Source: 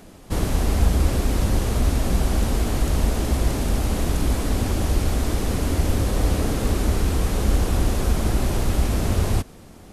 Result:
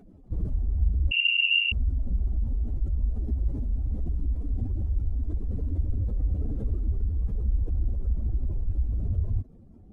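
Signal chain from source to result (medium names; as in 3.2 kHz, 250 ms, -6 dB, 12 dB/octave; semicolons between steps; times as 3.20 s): spectral contrast enhancement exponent 2.2; 1.11–1.72 s: frequency inversion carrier 2.8 kHz; trim -5.5 dB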